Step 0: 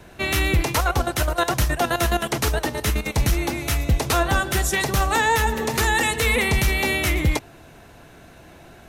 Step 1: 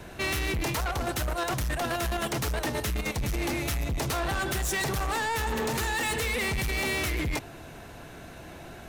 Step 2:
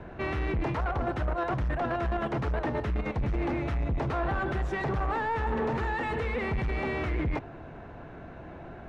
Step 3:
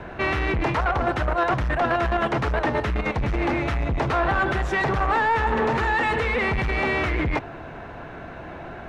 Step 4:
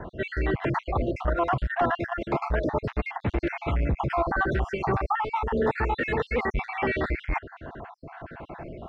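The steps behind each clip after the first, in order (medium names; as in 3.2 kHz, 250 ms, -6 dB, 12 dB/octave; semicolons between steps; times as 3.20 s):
in parallel at +2 dB: compressor with a negative ratio -23 dBFS, ratio -0.5; on the sum: saturation -19 dBFS, distortion -9 dB; trim -7 dB
low-pass 1.5 kHz 12 dB/octave; trim +1 dB
tilt shelf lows -4 dB, about 670 Hz; trim +8 dB
random holes in the spectrogram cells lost 53%; low-pass 2 kHz 6 dB/octave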